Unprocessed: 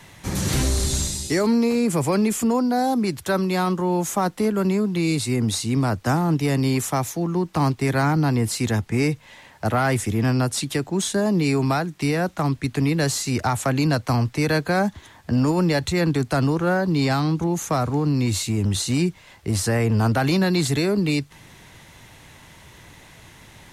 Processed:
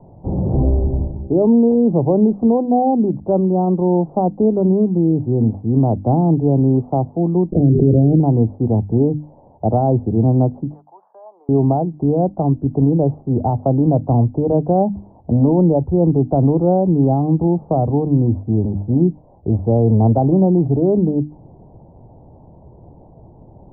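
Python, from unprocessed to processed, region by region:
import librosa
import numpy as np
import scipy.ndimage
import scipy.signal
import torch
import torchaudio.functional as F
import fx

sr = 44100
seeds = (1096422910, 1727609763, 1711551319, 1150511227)

y = fx.chain(x, sr, fx.cheby2_bandstop(low_hz=890.0, high_hz=4700.0, order=4, stop_db=40),
    fx.hum_notches(base_hz=50, count=8),
    fx.env_flatten(amount_pct=100), at=(7.52, 8.2))
y = fx.chain(y, sr, fx.highpass(hz=1100.0, slope=24),
    fx.air_absorb(metres=340.0),
    fx.band_squash(depth_pct=100), at=(10.74, 11.49))
y = scipy.signal.sosfilt(scipy.signal.butter(8, 810.0, 'lowpass', fs=sr, output='sos'), y)
y = fx.hum_notches(y, sr, base_hz=50, count=6)
y = F.gain(torch.from_numpy(y), 7.0).numpy()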